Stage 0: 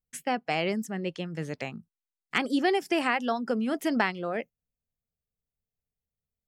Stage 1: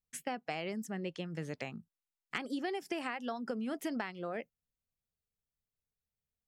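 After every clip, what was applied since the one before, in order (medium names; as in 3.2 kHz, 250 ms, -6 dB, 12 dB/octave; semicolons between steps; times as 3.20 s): compression, threshold -30 dBFS, peak gain reduction 10.5 dB; trim -4 dB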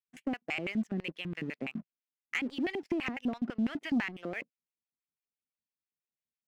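LFO band-pass square 6 Hz 260–2400 Hz; waveshaping leveller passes 2; treble shelf 7.4 kHz -9 dB; trim +4.5 dB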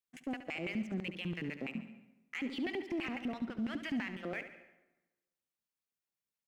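peak limiter -30.5 dBFS, peak gain reduction 10 dB; on a send: feedback delay 70 ms, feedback 48%, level -11 dB; on the sum: plate-style reverb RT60 1.1 s, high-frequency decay 0.7×, pre-delay 110 ms, DRR 16 dB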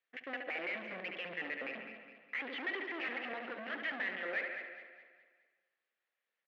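valve stage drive 46 dB, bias 0.4; cabinet simulation 470–3300 Hz, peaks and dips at 510 Hz +6 dB, 960 Hz -4 dB, 1.8 kHz +9 dB; on a send: feedback delay 207 ms, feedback 43%, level -9.5 dB; on the sum: trim +9 dB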